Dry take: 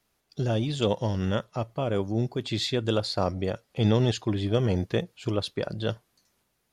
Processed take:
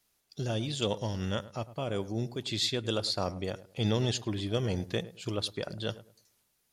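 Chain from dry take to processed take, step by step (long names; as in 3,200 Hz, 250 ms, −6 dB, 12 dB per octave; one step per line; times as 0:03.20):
high-shelf EQ 3,000 Hz +10.5 dB
feedback echo with a low-pass in the loop 105 ms, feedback 27%, low-pass 1,300 Hz, level −15.5 dB
level −6.5 dB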